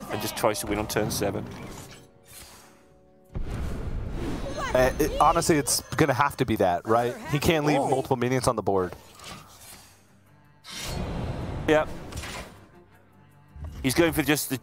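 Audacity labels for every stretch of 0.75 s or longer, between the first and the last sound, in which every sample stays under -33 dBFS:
2.420000	3.350000	silence
9.730000	10.690000	silence
12.430000	13.620000	silence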